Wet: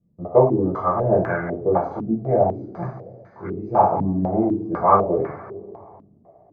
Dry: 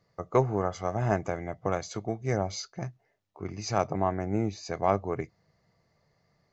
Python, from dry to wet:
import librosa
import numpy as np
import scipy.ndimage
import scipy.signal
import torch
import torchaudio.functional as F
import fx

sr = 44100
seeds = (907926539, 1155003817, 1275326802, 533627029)

y = fx.rev_double_slope(x, sr, seeds[0], early_s=0.48, late_s=2.9, knee_db=-18, drr_db=-8.0)
y = fx.filter_held_lowpass(y, sr, hz=4.0, low_hz=240.0, high_hz=1500.0)
y = F.gain(torch.from_numpy(y), -3.5).numpy()